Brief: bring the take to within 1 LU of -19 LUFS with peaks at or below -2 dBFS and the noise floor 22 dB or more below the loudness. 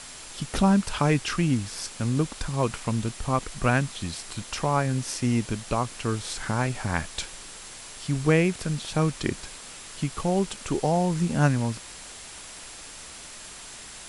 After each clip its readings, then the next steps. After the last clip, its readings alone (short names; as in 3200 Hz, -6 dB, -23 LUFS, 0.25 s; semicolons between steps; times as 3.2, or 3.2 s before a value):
steady tone 7500 Hz; tone level -52 dBFS; noise floor -43 dBFS; noise floor target -49 dBFS; loudness -26.5 LUFS; peak -6.5 dBFS; loudness target -19.0 LUFS
-> notch 7500 Hz, Q 30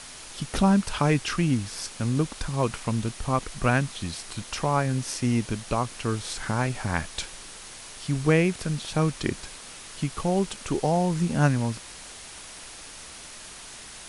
steady tone none; noise floor -43 dBFS; noise floor target -49 dBFS
-> noise print and reduce 6 dB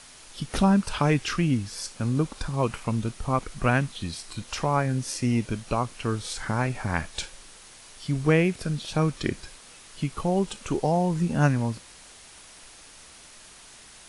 noise floor -49 dBFS; loudness -26.5 LUFS; peak -6.5 dBFS; loudness target -19.0 LUFS
-> gain +7.5 dB; limiter -2 dBFS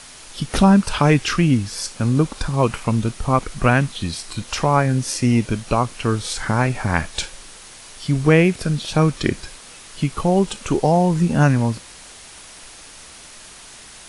loudness -19.5 LUFS; peak -2.0 dBFS; noise floor -42 dBFS